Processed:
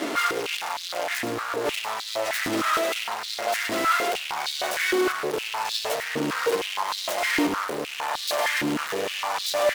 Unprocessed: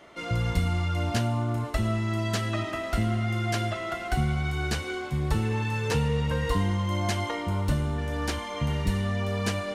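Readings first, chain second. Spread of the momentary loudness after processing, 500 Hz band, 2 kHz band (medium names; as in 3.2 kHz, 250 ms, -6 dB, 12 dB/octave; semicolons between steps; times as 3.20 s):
6 LU, +5.5 dB, +7.5 dB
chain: self-modulated delay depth 0.7 ms; in parallel at +2 dB: compressor with a negative ratio -33 dBFS, ratio -0.5; on the sum: fuzz box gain 47 dB, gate -42 dBFS; flange 0.26 Hz, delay 3.9 ms, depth 3.5 ms, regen -72%; on a send: delay 101 ms -11 dB; on the sum: step-sequenced high-pass 6.5 Hz 290–3900 Hz; trim -8.5 dB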